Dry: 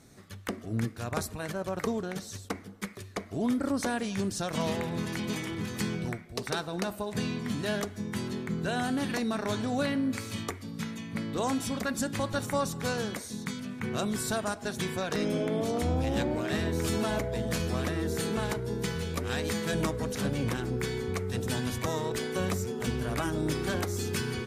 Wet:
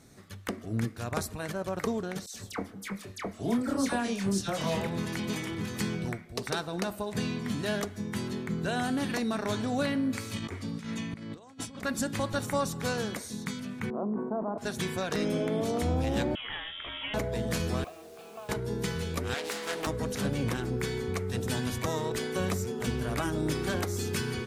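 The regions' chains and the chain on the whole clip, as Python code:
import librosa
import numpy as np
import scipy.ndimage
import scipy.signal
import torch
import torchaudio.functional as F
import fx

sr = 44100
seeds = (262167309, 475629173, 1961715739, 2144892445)

y = fx.chain(x, sr, fx.doubler(ms=26.0, db=-6.5),
    fx.dispersion(late='lows', ms=83.0, hz=1700.0), at=(2.26, 4.87))
y = fx.chain(y, sr, fx.peak_eq(hz=13000.0, db=-14.0, octaves=0.31),
    fx.over_compress(threshold_db=-38.0, ratio=-0.5), at=(10.36, 11.83))
y = fx.chain(y, sr, fx.ellip_bandpass(low_hz=200.0, high_hz=1000.0, order=3, stop_db=60),
    fx.sustainer(db_per_s=38.0), at=(13.9, 14.58))
y = fx.chain(y, sr, fx.highpass(hz=1200.0, slope=6),
    fx.freq_invert(carrier_hz=3600), at=(16.35, 17.14))
y = fx.chain(y, sr, fx.vowel_filter(vowel='a'),
    fx.quant_dither(seeds[0], bits=10, dither='triangular'),
    fx.resample_bad(factor=2, down='none', up='hold'), at=(17.84, 18.49))
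y = fx.chain(y, sr, fx.highpass(hz=460.0, slope=12),
    fx.doppler_dist(depth_ms=0.4), at=(19.34, 19.87))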